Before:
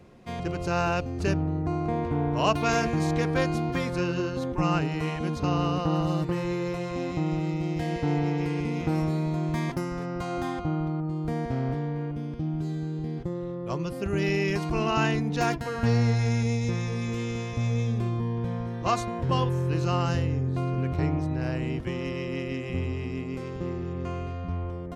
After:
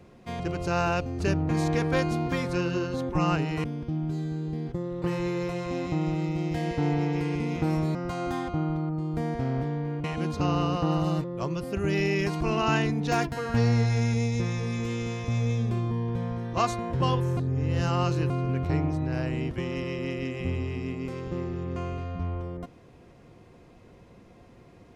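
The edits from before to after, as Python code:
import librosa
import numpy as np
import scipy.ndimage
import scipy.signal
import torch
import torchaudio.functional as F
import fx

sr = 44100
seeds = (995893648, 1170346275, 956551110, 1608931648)

y = fx.edit(x, sr, fx.cut(start_s=1.49, length_s=1.43),
    fx.swap(start_s=5.07, length_s=1.2, other_s=12.15, other_length_s=1.38),
    fx.cut(start_s=9.2, length_s=0.86),
    fx.reverse_span(start_s=19.66, length_s=0.93), tone=tone)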